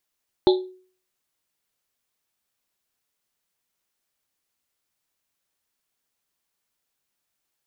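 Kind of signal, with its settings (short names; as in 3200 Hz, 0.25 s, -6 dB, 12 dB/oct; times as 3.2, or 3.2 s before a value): Risset drum, pitch 370 Hz, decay 0.46 s, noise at 3800 Hz, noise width 710 Hz, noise 15%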